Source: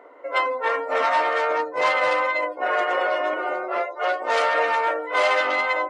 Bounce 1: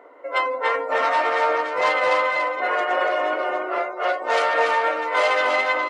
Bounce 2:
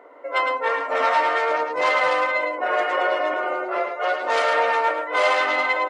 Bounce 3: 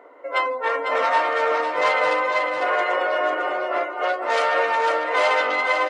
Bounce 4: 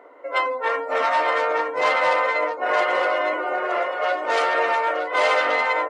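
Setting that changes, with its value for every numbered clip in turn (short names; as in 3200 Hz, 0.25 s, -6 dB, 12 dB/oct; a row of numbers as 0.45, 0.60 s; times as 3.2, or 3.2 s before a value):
echo, time: 0.287, 0.108, 0.5, 0.917 s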